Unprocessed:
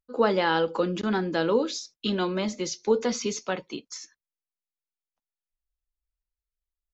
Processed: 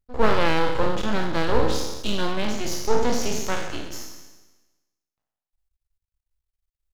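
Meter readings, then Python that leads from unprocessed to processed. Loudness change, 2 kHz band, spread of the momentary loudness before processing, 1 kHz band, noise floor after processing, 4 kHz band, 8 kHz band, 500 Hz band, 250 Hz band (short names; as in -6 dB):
+1.5 dB, +3.0 dB, 10 LU, +3.5 dB, under -85 dBFS, +3.0 dB, n/a, +0.5 dB, +0.5 dB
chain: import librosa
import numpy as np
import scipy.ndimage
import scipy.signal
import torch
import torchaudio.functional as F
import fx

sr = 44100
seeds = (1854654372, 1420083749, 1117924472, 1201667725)

y = fx.spec_trails(x, sr, decay_s=1.16)
y = np.maximum(y, 0.0)
y = fx.low_shelf(y, sr, hz=110.0, db=9.0)
y = y * 10.0 ** (2.0 / 20.0)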